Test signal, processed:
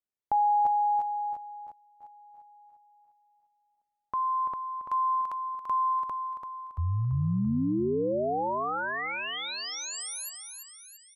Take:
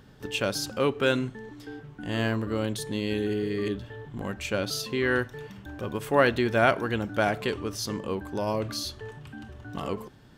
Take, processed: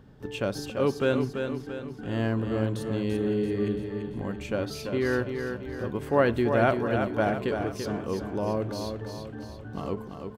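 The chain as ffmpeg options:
-filter_complex "[0:a]tiltshelf=f=1400:g=5.5,asplit=2[s0][s1];[s1]aecho=0:1:338|676|1014|1352|1690|2028:0.473|0.232|0.114|0.0557|0.0273|0.0134[s2];[s0][s2]amix=inputs=2:normalize=0,volume=0.596"

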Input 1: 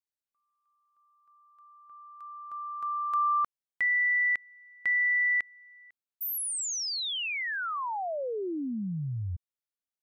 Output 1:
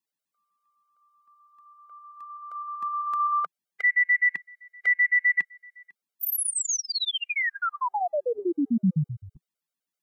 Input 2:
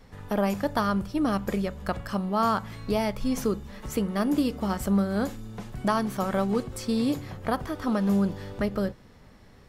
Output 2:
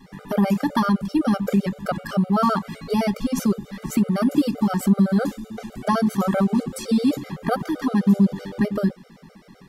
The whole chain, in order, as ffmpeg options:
-af "lowshelf=f=130:t=q:w=3:g=-9.5,acompressor=threshold=0.0316:ratio=1.5:attack=30:release=20:knee=6:detection=peak,afftfilt=real='re*gt(sin(2*PI*7.8*pts/sr)*(1-2*mod(floor(b*sr/1024/400),2)),0)':imag='im*gt(sin(2*PI*7.8*pts/sr)*(1-2*mod(floor(b*sr/1024/400),2)),0)':win_size=1024:overlap=0.75,volume=2.51"

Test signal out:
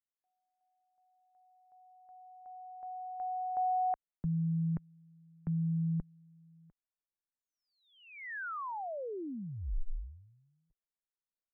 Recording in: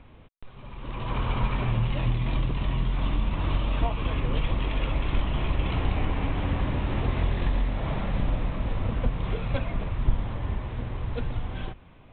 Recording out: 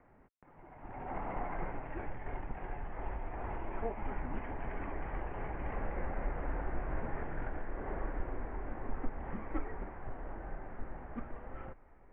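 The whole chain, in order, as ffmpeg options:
-af "highpass=f=230:t=q:w=0.5412,highpass=f=230:t=q:w=1.307,lowpass=f=2100:t=q:w=0.5176,lowpass=f=2100:t=q:w=0.7071,lowpass=f=2100:t=q:w=1.932,afreqshift=-240,asubboost=boost=3.5:cutoff=54,volume=0.562"

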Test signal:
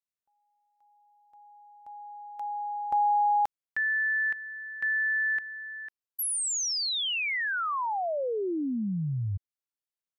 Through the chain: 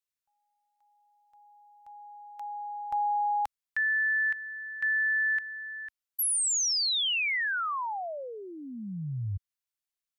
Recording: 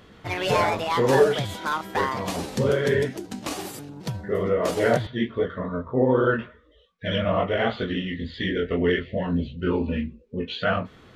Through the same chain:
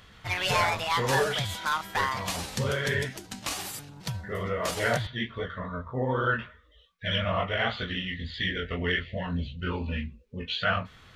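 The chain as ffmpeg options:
-af "equalizer=f=340:t=o:w=2.2:g=-15,volume=1.33"

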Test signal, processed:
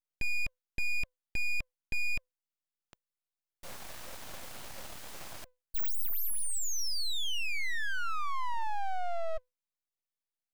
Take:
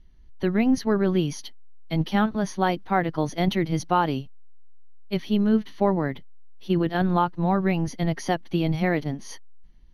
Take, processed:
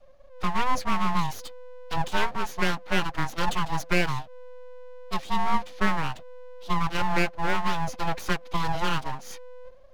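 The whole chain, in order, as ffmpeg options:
-af "afreqshift=250,aeval=exprs='abs(val(0))':c=same"

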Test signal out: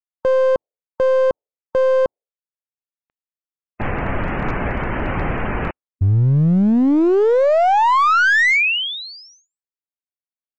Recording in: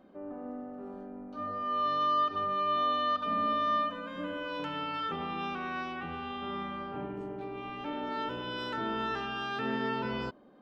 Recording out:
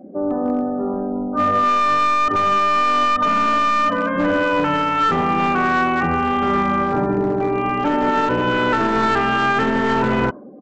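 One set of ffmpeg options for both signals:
-af "lowpass=f=2400:w=0.5412,lowpass=f=2400:w=1.3066,afftdn=nr=28:nf=-54,aresample=16000,aeval=exprs='clip(val(0),-1,0.0211)':c=same,aresample=44100,alimiter=level_in=29.9:limit=0.891:release=50:level=0:latency=1,volume=0.355"

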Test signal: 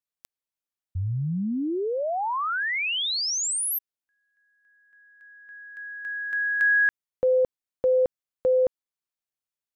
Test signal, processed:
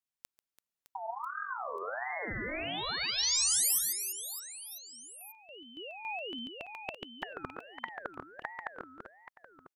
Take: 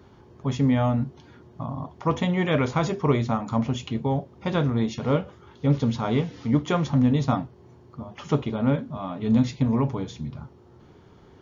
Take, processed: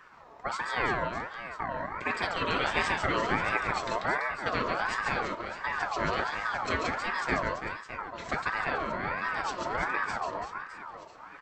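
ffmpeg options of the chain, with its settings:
-af "afftfilt=real='re*lt(hypot(re,im),0.501)':imag='im*lt(hypot(re,im),0.501)':win_size=1024:overlap=0.75,aecho=1:1:140|336|610.4|994.6|1532:0.631|0.398|0.251|0.158|0.1,aeval=exprs='val(0)*sin(2*PI*1100*n/s+1100*0.3/1.4*sin(2*PI*1.4*n/s))':c=same"

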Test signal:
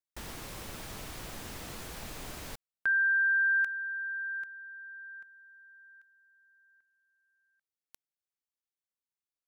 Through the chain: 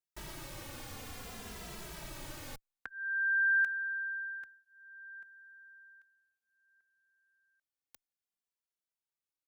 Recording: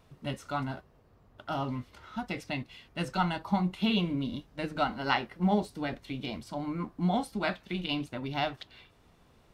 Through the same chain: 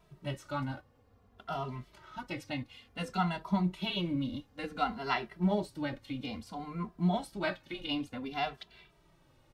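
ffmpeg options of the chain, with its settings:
-filter_complex "[0:a]asplit=2[s0][s1];[s1]adelay=2.6,afreqshift=-0.57[s2];[s0][s2]amix=inputs=2:normalize=1"

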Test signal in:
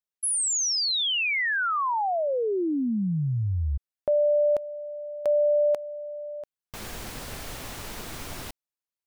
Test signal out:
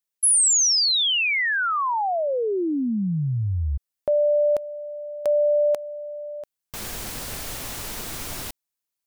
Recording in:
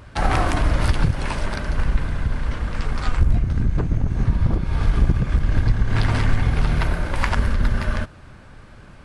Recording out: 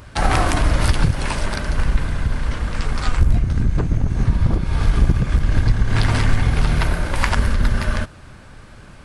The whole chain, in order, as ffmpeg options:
-af "highshelf=f=4700:g=7.5,volume=1.26"

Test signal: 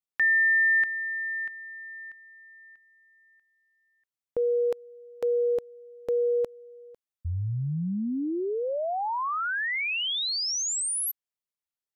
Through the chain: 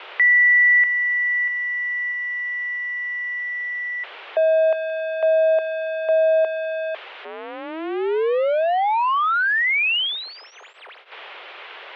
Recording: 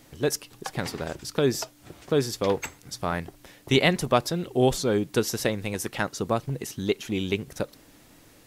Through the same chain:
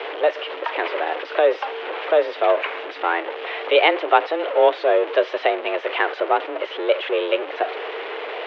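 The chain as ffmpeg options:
-af "aeval=exprs='val(0)+0.5*0.0531*sgn(val(0))':c=same,highpass=f=230:t=q:w=0.5412,highpass=f=230:t=q:w=1.307,lowpass=f=3000:t=q:w=0.5176,lowpass=f=3000:t=q:w=0.7071,lowpass=f=3000:t=q:w=1.932,afreqshift=160,volume=1.78"

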